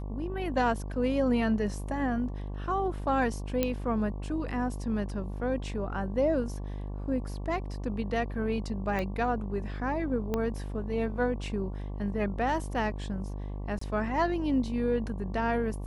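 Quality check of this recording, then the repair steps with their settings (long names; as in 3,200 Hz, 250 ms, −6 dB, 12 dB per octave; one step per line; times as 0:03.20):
mains buzz 50 Hz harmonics 23 −36 dBFS
0:03.63: click −13 dBFS
0:08.99: click −20 dBFS
0:10.34: click −17 dBFS
0:13.79–0:13.81: drop-out 24 ms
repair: click removal
hum removal 50 Hz, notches 23
repair the gap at 0:13.79, 24 ms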